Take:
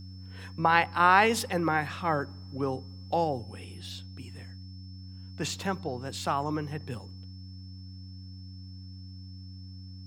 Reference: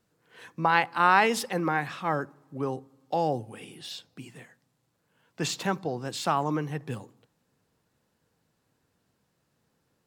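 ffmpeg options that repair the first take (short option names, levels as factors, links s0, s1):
-af "bandreject=f=93.2:t=h:w=4,bandreject=f=186.4:t=h:w=4,bandreject=f=279.6:t=h:w=4,bandreject=f=5300:w=30,asetnsamples=n=441:p=0,asendcmd='3.24 volume volume 3dB',volume=1"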